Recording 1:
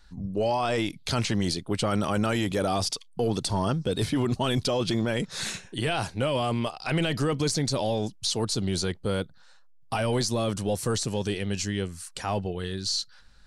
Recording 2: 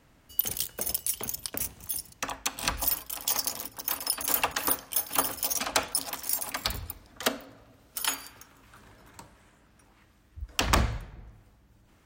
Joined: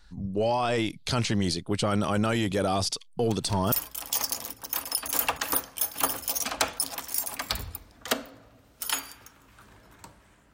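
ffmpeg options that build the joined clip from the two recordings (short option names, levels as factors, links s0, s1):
-filter_complex "[1:a]asplit=2[s0][s1];[0:a]apad=whole_dur=10.53,atrim=end=10.53,atrim=end=3.722[s2];[s1]atrim=start=2.868:end=9.68[s3];[s0]atrim=start=2.39:end=2.87,asetpts=PTS-STARTPTS,volume=0.168,afade=t=in:d=0.004:c=hsin,afade=t=out:st=0.476:d=0.004:c=hsin,adelay=3240[s4];[s2][s3]acrossfade=d=0.004:c1=hsin:c2=hsin[s5];[s5][s4]amix=inputs=2:normalize=0"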